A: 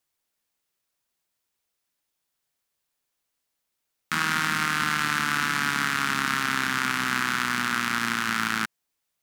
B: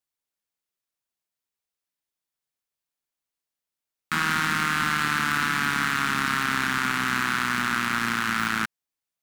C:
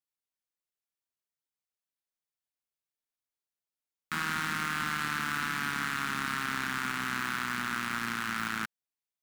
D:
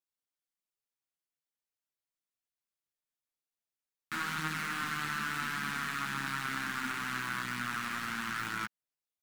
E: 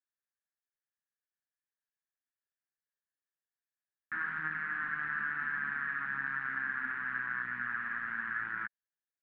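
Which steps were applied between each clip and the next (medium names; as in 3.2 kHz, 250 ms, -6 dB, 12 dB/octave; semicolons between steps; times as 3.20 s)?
waveshaping leveller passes 2; trim -5 dB
short-mantissa float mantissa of 2-bit; trim -8 dB
chorus voices 4, 0.42 Hz, delay 11 ms, depth 5 ms
four-pole ladder low-pass 1.8 kHz, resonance 80%; trim +2 dB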